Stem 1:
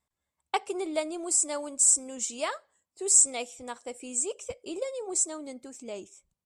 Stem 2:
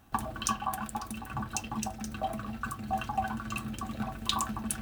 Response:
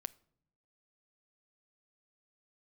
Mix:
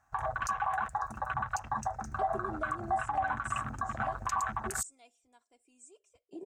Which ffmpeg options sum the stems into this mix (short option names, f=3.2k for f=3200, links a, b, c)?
-filter_complex "[0:a]bandreject=f=7.6k:w=28,aecho=1:1:2.9:0.65,adelay=1650,volume=-10.5dB[a];[1:a]firequalizer=gain_entry='entry(120,0);entry(200,-9);entry(420,-8);entry(690,9);entry(1700,12);entry(3100,-8);entry(6600,11);entry(11000,-5)':delay=0.05:min_phase=1,volume=1dB[b];[a][b]amix=inputs=2:normalize=0,afwtdn=0.0224,alimiter=limit=-22dB:level=0:latency=1:release=106"